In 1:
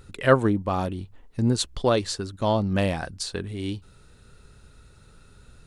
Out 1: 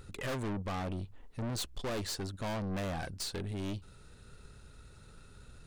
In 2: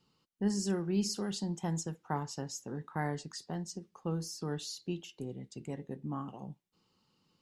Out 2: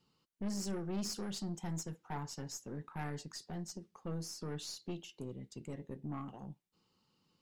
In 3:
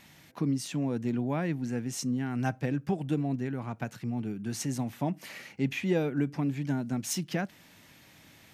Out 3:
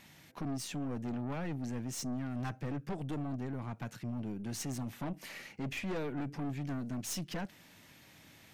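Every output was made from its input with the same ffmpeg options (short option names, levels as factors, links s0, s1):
-af "aeval=exprs='(tanh(44.7*val(0)+0.4)-tanh(0.4))/44.7':c=same,volume=0.891"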